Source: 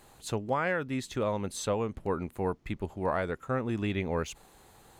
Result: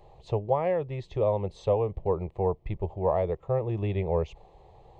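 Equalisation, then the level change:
head-to-tape spacing loss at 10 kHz 43 dB
phaser with its sweep stopped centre 610 Hz, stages 4
+9.0 dB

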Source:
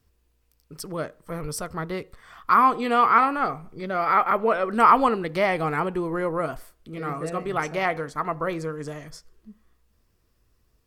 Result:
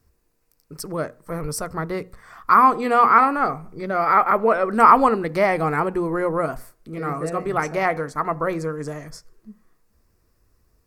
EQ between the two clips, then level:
parametric band 3,200 Hz −10.5 dB 0.59 octaves
mains-hum notches 60/120/180/240 Hz
+4.0 dB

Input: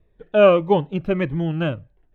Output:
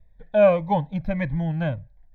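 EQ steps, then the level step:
low-shelf EQ 63 Hz +9.5 dB
phaser with its sweep stopped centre 1,900 Hz, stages 8
0.0 dB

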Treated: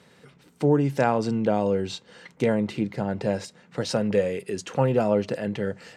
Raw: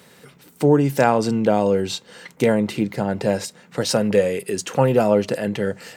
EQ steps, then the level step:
high-frequency loss of the air 57 metres
low-shelf EQ 120 Hz +4.5 dB
−5.5 dB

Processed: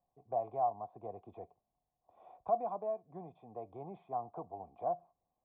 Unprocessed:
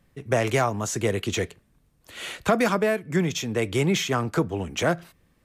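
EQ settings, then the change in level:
formant resonators in series a
flat-topped bell 1,800 Hz −12.5 dB
0.0 dB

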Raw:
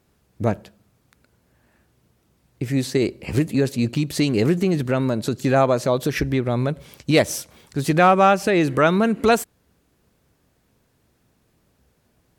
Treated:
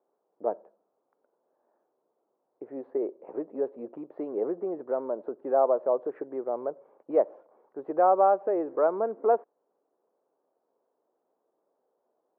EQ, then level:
high-pass filter 440 Hz 24 dB per octave
low-pass filter 1,000 Hz 24 dB per octave
spectral tilt −2 dB per octave
−5.0 dB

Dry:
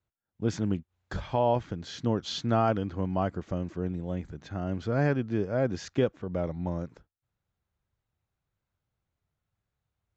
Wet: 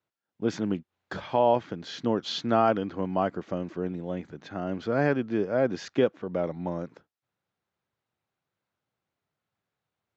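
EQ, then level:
band-pass filter 210–5,200 Hz
+3.5 dB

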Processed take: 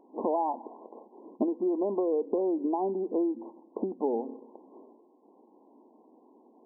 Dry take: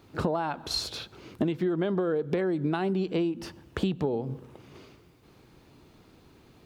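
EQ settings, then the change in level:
linear-phase brick-wall band-pass 210–1,100 Hz
parametric band 800 Hz +3.5 dB 0.42 octaves
0.0 dB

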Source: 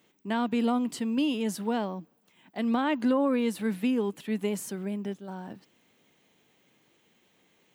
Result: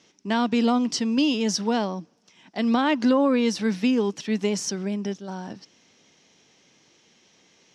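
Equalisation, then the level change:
low-pass with resonance 5,600 Hz, resonance Q 6.4
+5.0 dB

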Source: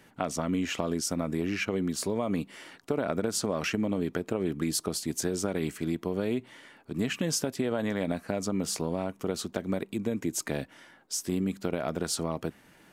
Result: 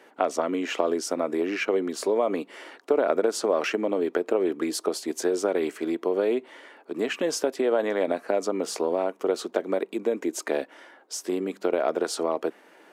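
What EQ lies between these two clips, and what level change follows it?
high-pass filter 380 Hz 24 dB per octave
spectral tilt −3 dB per octave
+6.5 dB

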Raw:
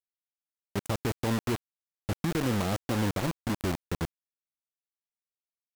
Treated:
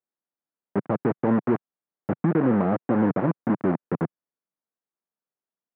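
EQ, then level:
high-pass filter 150 Hz 24 dB per octave
low-pass filter 1,800 Hz 24 dB per octave
tilt shelving filter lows +4.5 dB, about 1,200 Hz
+5.0 dB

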